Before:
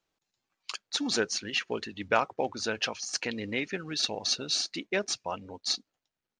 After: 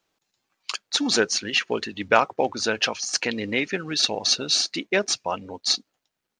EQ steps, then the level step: bass shelf 81 Hz -9 dB; +7.5 dB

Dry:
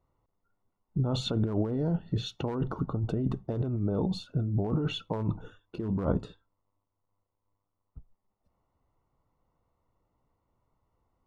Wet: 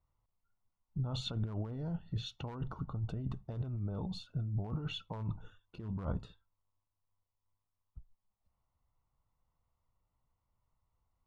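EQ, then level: peaking EQ 360 Hz -14 dB 2.2 oct; peaking EQ 1.7 kHz -3 dB 1 oct; treble shelf 5.1 kHz -8.5 dB; -2.0 dB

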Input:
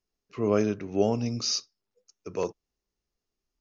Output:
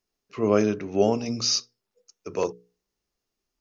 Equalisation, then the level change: bass shelf 98 Hz -7 dB; hum notches 60/120/180/240/300/360/420/480 Hz; +4.5 dB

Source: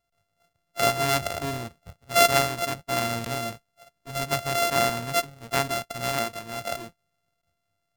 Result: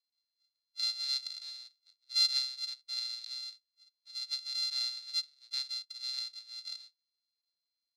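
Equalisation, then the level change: ladder band-pass 4.3 kHz, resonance 85%; peaking EQ 3.1 kHz -8 dB 0.4 oct; treble shelf 5.8 kHz -5.5 dB; +2.0 dB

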